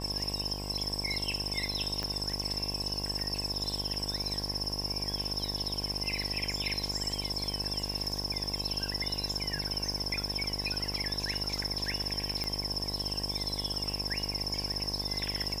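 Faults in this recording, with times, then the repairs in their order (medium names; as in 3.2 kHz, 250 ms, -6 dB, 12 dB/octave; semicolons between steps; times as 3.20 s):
buzz 50 Hz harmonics 22 -39 dBFS
2.03 s: pop -20 dBFS
12.44 s: pop -19 dBFS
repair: de-click; de-hum 50 Hz, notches 22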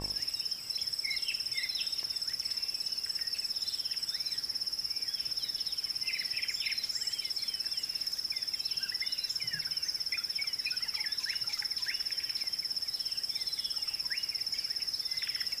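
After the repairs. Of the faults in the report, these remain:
2.03 s: pop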